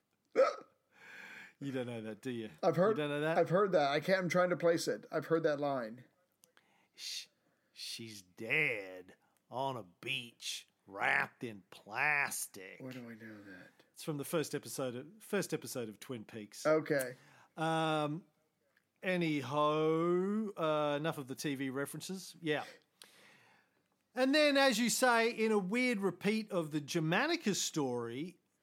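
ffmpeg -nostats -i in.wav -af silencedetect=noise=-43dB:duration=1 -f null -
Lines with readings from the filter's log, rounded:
silence_start: 23.04
silence_end: 24.16 | silence_duration: 1.13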